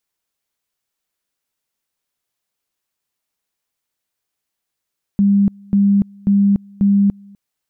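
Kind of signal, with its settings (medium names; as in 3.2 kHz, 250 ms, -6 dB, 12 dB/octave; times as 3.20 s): two-level tone 200 Hz -9.5 dBFS, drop 28.5 dB, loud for 0.29 s, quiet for 0.25 s, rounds 4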